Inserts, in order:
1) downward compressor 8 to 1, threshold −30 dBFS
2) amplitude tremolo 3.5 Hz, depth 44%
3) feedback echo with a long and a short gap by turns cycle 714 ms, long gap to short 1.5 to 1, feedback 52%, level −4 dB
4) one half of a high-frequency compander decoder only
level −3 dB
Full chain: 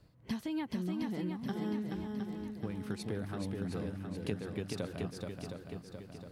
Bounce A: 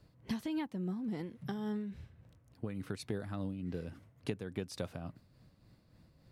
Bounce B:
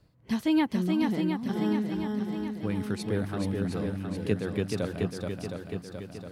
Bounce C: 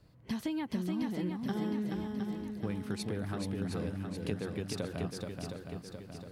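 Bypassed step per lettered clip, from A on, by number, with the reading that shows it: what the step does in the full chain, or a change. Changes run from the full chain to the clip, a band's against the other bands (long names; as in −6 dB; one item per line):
3, change in crest factor +3.0 dB
1, average gain reduction 6.0 dB
2, change in crest factor −2.0 dB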